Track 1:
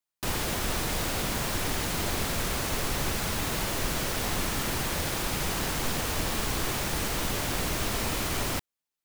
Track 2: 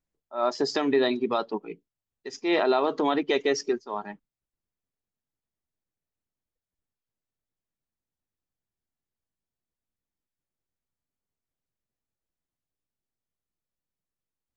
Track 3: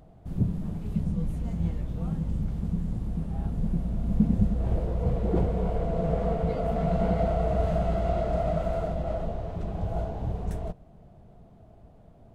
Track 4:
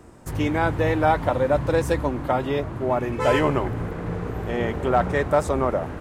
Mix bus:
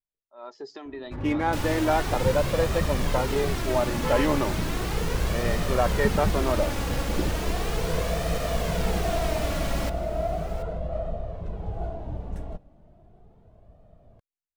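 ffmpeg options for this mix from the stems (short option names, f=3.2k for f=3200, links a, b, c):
-filter_complex "[0:a]adelay=1300,volume=2.5dB,asplit=2[a][b];[b]volume=-15dB[c];[1:a]volume=-11dB[d];[2:a]adelay=1850,volume=2dB[e];[3:a]adynamicsmooth=sensitivity=8:basefreq=1.4k,adelay=850,volume=0.5dB[f];[c]aecho=0:1:730:1[g];[a][d][e][f][g]amix=inputs=5:normalize=0,highshelf=f=5.6k:g=-7.5,flanger=delay=1.6:depth=2:regen=43:speed=0.36:shape=sinusoidal"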